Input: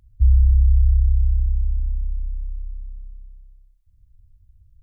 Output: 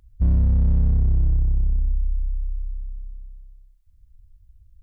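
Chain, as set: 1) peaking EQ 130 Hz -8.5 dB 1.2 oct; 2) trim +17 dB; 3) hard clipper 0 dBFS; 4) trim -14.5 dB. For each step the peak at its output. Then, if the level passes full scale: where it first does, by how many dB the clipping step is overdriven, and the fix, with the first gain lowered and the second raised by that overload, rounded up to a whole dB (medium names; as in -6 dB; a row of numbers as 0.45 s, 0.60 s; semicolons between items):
-8.0 dBFS, +9.0 dBFS, 0.0 dBFS, -14.5 dBFS; step 2, 9.0 dB; step 2 +8 dB, step 4 -5.5 dB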